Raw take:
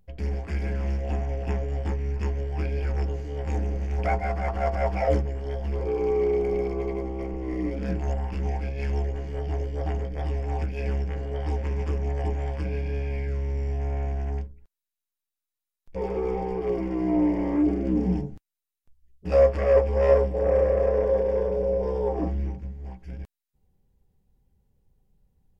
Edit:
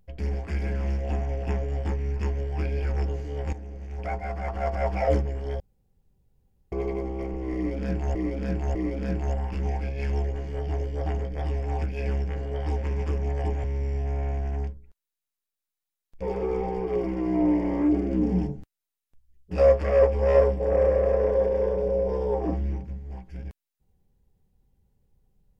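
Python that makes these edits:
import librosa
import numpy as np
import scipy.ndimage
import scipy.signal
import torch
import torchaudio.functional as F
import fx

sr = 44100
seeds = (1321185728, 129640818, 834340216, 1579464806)

y = fx.edit(x, sr, fx.fade_in_from(start_s=3.53, length_s=1.56, floor_db=-14.0),
    fx.room_tone_fill(start_s=5.6, length_s=1.12),
    fx.repeat(start_s=7.55, length_s=0.6, count=3),
    fx.cut(start_s=12.44, length_s=0.94), tone=tone)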